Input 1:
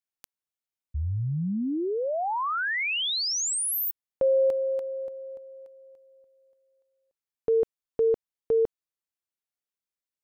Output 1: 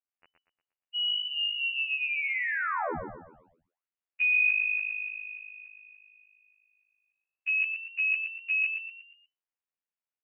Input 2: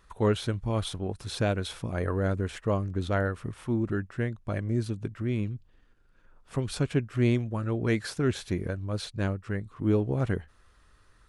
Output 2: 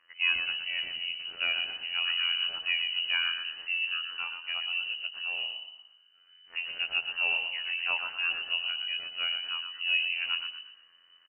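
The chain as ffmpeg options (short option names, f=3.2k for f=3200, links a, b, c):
-filter_complex "[0:a]afftfilt=real='hypot(re,im)*cos(PI*b)':imag='0':win_size=2048:overlap=0.75,asplit=6[a][b][c][d][e][f];[b]adelay=118,afreqshift=-52,volume=-6.5dB[g];[c]adelay=236,afreqshift=-104,volume=-14dB[h];[d]adelay=354,afreqshift=-156,volume=-21.6dB[i];[e]adelay=472,afreqshift=-208,volume=-29.1dB[j];[f]adelay=590,afreqshift=-260,volume=-36.6dB[k];[a][g][h][i][j][k]amix=inputs=6:normalize=0,lowpass=f=2.6k:t=q:w=0.5098,lowpass=f=2.6k:t=q:w=0.6013,lowpass=f=2.6k:t=q:w=0.9,lowpass=f=2.6k:t=q:w=2.563,afreqshift=-3000"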